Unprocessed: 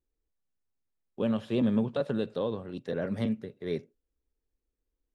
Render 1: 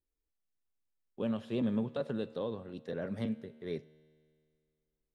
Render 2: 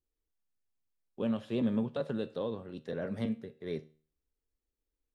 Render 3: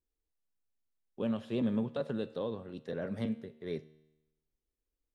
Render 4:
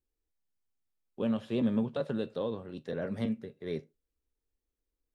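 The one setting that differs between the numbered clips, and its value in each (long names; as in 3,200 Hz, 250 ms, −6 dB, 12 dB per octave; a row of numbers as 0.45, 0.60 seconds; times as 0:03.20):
tuned comb filter, decay: 2.2, 0.44, 1, 0.18 seconds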